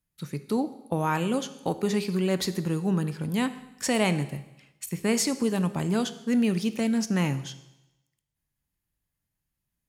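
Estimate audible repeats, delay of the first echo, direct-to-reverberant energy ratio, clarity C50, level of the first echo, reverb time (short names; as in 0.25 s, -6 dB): none, none, 11.5 dB, 14.0 dB, none, 0.95 s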